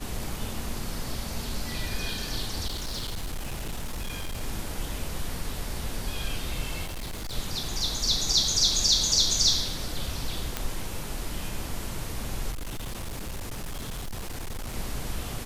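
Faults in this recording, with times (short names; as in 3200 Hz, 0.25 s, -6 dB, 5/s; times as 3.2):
2.67–4.42 clipped -28.5 dBFS
6.85–7.34 clipped -31 dBFS
10.57 pop -11 dBFS
12.51–14.76 clipped -30.5 dBFS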